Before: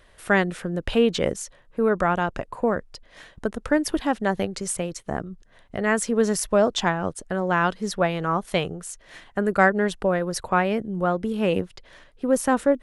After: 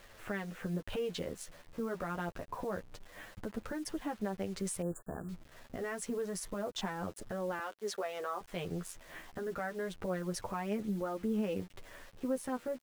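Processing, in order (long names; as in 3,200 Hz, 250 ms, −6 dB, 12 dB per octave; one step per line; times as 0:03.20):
adaptive Wiener filter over 9 samples
0:07.59–0:08.41: high-pass filter 360 Hz 24 dB per octave
downward compressor 16 to 1, threshold −29 dBFS, peak gain reduction 18 dB
brickwall limiter −25.5 dBFS, peak gain reduction 9 dB
bit reduction 9 bits
flanger 0.27 Hz, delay 8.9 ms, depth 3.8 ms, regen +2%
0:04.82–0:05.29: linear-phase brick-wall band-stop 1,800–6,800 Hz
level +1 dB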